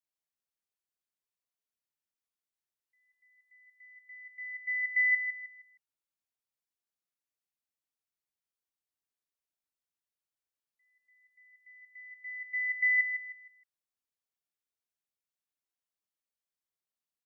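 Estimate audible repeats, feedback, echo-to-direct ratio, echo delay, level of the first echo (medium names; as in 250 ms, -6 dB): 3, 33%, -7.5 dB, 156 ms, -8.0 dB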